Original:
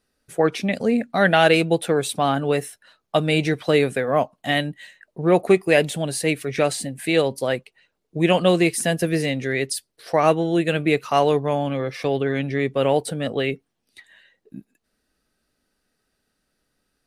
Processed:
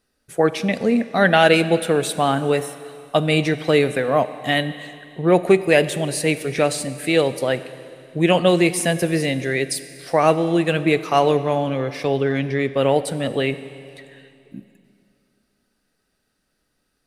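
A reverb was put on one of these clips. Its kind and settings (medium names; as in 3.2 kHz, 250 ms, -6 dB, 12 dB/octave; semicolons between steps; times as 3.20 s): Schroeder reverb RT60 2.6 s, combs from 30 ms, DRR 13 dB; trim +1.5 dB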